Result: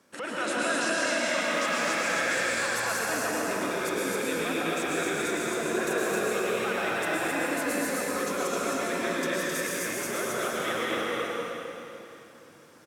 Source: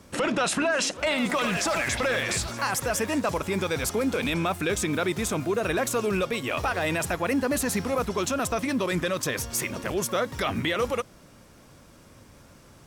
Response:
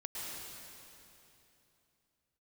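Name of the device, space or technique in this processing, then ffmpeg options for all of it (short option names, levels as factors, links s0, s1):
stadium PA: -filter_complex "[0:a]highpass=240,equalizer=f=1600:t=o:w=0.47:g=5.5,aecho=1:1:227.4|262.4:0.316|0.708[s0];[1:a]atrim=start_sample=2205[s1];[s0][s1]afir=irnorm=-1:irlink=0,volume=0.562"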